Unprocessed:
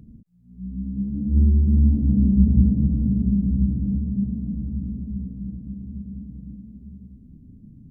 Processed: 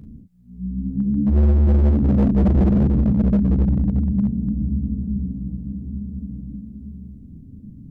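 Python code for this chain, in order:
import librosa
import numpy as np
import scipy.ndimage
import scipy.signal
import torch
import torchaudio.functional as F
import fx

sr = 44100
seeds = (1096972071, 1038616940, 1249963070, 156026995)

y = fx.room_early_taps(x, sr, ms=(14, 38, 49), db=(-11.0, -4.5, -10.0))
y = np.clip(10.0 ** (16.5 / 20.0) * y, -1.0, 1.0) / 10.0 ** (16.5 / 20.0)
y = F.gain(torch.from_numpy(y), 4.0).numpy()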